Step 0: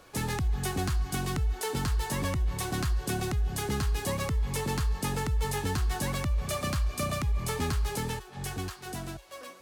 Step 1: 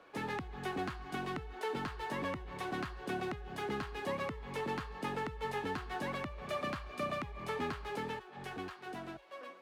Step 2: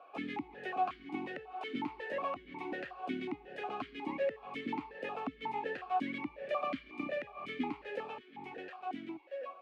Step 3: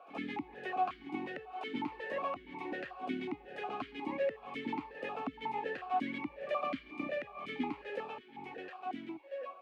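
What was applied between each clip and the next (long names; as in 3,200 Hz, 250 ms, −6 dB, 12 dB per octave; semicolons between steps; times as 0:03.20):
three-way crossover with the lows and the highs turned down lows −18 dB, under 200 Hz, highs −20 dB, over 3,400 Hz; level −3 dB
formant filter that steps through the vowels 5.5 Hz; level +11.5 dB
echo ahead of the sound 78 ms −16 dB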